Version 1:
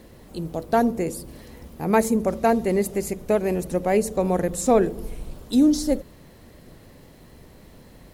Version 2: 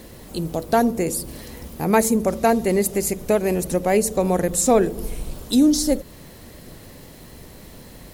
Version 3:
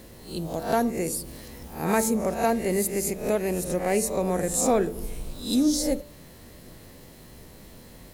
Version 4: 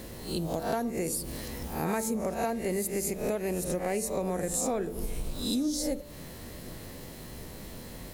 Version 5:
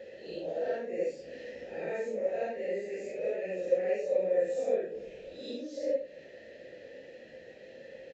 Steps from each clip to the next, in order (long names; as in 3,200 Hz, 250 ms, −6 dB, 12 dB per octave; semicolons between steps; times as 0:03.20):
high-shelf EQ 3,700 Hz +7.5 dB; in parallel at −2 dB: downward compressor, threshold −28 dBFS, peak gain reduction 15 dB
peak hold with a rise ahead of every peak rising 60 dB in 0.44 s; hum removal 146.3 Hz, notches 30; level −6.5 dB
downward compressor 4 to 1, threshold −33 dBFS, peak gain reduction 13.5 dB; level +4 dB
random phases in long frames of 200 ms; formant filter e; downsampling to 16,000 Hz; level +7.5 dB